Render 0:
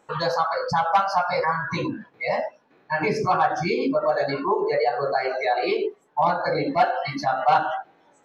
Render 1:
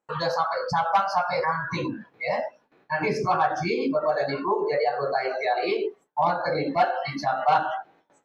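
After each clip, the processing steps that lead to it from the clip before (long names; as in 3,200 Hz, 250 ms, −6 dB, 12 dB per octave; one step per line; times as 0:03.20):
noise gate with hold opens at −48 dBFS
level −2 dB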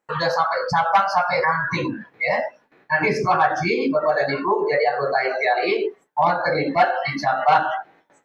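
parametric band 1,900 Hz +6.5 dB 0.58 octaves
level +4 dB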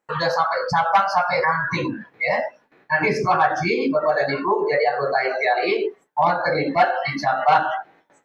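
no processing that can be heard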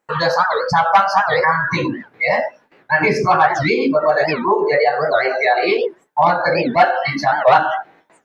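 wow of a warped record 78 rpm, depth 250 cents
level +4.5 dB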